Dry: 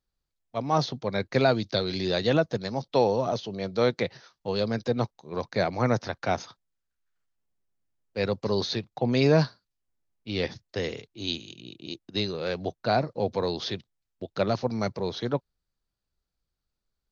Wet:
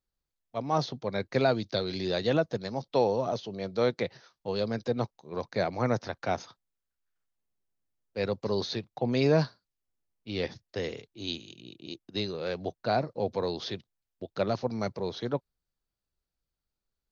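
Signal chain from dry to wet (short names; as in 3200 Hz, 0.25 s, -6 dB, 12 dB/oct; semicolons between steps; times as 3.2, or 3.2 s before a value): bell 490 Hz +2 dB 2.1 oct; gain -4.5 dB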